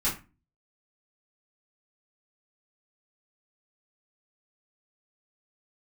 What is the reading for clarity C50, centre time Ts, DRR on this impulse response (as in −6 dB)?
9.0 dB, 26 ms, −9.0 dB